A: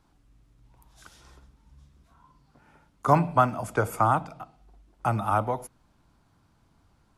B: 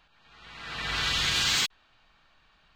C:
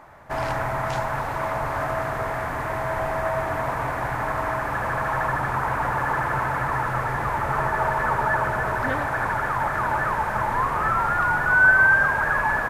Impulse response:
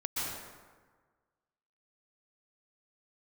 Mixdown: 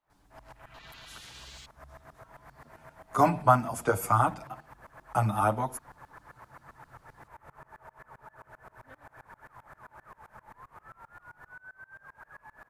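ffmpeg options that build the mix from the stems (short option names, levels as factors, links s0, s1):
-filter_complex "[0:a]highshelf=f=6600:g=8,asplit=2[s0][s1];[s1]adelay=7.9,afreqshift=1[s2];[s0][s2]amix=inputs=2:normalize=1,adelay=100,volume=1.19[s3];[1:a]afwtdn=0.01,volume=0.168[s4];[2:a]aeval=exprs='val(0)*pow(10,-27*if(lt(mod(-7.6*n/s,1),2*abs(-7.6)/1000),1-mod(-7.6*n/s,1)/(2*abs(-7.6)/1000),(mod(-7.6*n/s,1)-2*abs(-7.6)/1000)/(1-2*abs(-7.6)/1000))/20)':c=same,volume=0.141[s5];[s4][s5]amix=inputs=2:normalize=0,highshelf=f=8100:g=7,acompressor=threshold=0.00447:ratio=6,volume=1[s6];[s3][s6]amix=inputs=2:normalize=0"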